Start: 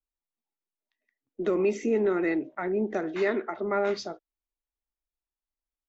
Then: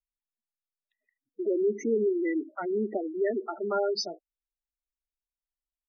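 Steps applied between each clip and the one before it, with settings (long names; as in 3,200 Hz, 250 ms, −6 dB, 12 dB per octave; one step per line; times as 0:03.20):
gate on every frequency bin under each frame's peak −10 dB strong
bass and treble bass −3 dB, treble +14 dB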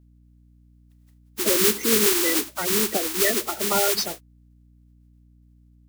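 compressing power law on the bin magnitudes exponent 0.21
mains hum 60 Hz, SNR 29 dB
level +7.5 dB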